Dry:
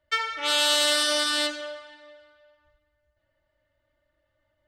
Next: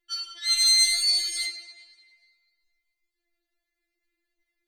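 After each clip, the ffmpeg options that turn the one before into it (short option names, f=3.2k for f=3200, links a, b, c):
-af "acontrast=44,highshelf=f=2.3k:t=q:w=1.5:g=7.5,afftfilt=real='re*4*eq(mod(b,16),0)':imag='im*4*eq(mod(b,16),0)':win_size=2048:overlap=0.75,volume=-8.5dB"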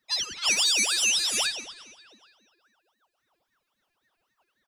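-filter_complex "[0:a]acompressor=threshold=-25dB:ratio=12,asplit=2[a][b];[b]adelay=375,lowpass=f=1k:p=1,volume=-17dB,asplit=2[c][d];[d]adelay=375,lowpass=f=1k:p=1,volume=0.34,asplit=2[e][f];[f]adelay=375,lowpass=f=1k:p=1,volume=0.34[g];[a][c][e][g]amix=inputs=4:normalize=0,aeval=exprs='val(0)*sin(2*PI*1100*n/s+1100*0.7/3.7*sin(2*PI*3.7*n/s))':c=same,volume=7.5dB"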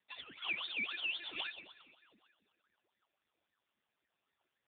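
-af "volume=-7dB" -ar 8000 -c:a libopencore_amrnb -b:a 5150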